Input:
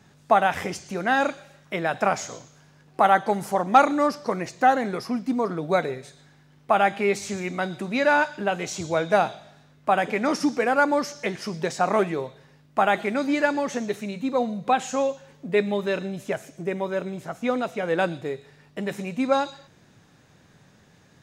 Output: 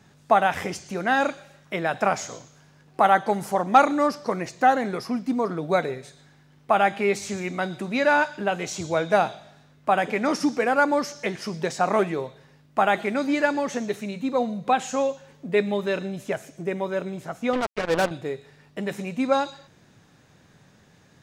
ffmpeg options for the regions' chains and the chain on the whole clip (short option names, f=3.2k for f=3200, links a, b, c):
-filter_complex "[0:a]asettb=1/sr,asplit=3[a][b][c];[a]atrim=end=17.534[d];[b]atrim=start=17.53:end=18.11,asetpts=PTS-STARTPTS,afade=t=in:d=0.004:c=qsin,afade=t=out:st=0.576:d=0.004:c=qsin,aemphasis=mode=reproduction:type=75fm,acrusher=bits=3:mix=0:aa=0.5[e];[c]atrim=start=18.106[f];[d][e]acrossfade=d=0.004:c1=hsin:c2=qsin[g];[g][f]acrossfade=d=0.004:c1=qsin:c2=hsin"